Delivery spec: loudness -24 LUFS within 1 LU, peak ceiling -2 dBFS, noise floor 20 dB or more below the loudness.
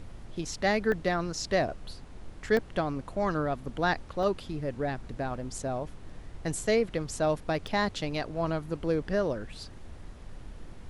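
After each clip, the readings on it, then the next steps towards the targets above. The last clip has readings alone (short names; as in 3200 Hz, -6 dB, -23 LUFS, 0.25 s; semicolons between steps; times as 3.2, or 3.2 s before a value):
dropouts 4; longest dropout 1.3 ms; noise floor -47 dBFS; noise floor target -51 dBFS; loudness -30.5 LUFS; peak -13.5 dBFS; loudness target -24.0 LUFS
-> interpolate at 0.92/2.57/4.23/7.67, 1.3 ms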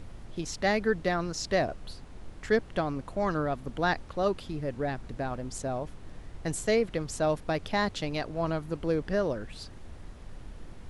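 dropouts 0; noise floor -47 dBFS; noise floor target -51 dBFS
-> noise print and reduce 6 dB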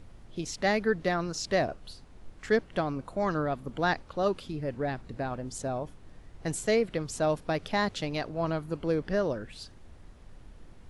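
noise floor -51 dBFS; loudness -30.5 LUFS; peak -13.5 dBFS; loudness target -24.0 LUFS
-> gain +6.5 dB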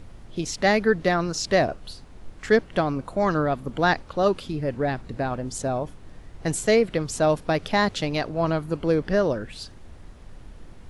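loudness -24.0 LUFS; peak -7.0 dBFS; noise floor -45 dBFS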